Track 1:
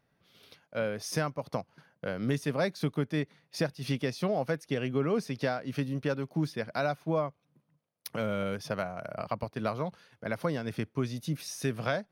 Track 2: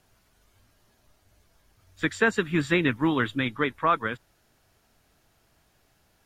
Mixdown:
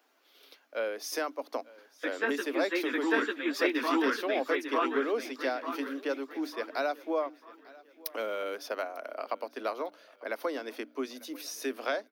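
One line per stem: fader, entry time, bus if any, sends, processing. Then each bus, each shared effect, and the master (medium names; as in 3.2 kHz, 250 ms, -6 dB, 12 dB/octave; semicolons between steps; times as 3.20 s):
-0.5 dB, 0.00 s, no send, echo send -22.5 dB, treble shelf 7.9 kHz +12 dB; hum notches 60/120/180/240/300 Hz
+2.0 dB, 0.00 s, no send, echo send -5 dB, three-phase chorus; auto duck -7 dB, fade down 0.95 s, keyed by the first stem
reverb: none
echo: feedback delay 897 ms, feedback 40%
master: steep high-pass 260 Hz 72 dB/octave; peaking EQ 9.4 kHz -10 dB 0.91 oct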